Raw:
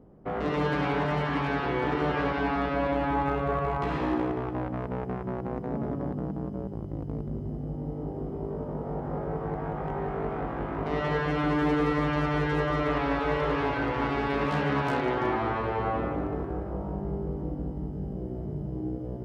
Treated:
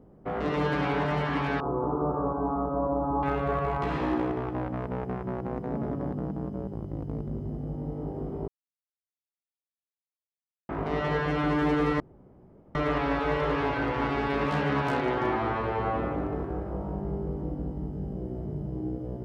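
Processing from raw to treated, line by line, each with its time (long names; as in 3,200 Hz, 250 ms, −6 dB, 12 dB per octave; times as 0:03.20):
0:01.60–0:03.23: elliptic low-pass filter 1,200 Hz
0:08.48–0:10.69: silence
0:12.00–0:12.75: fill with room tone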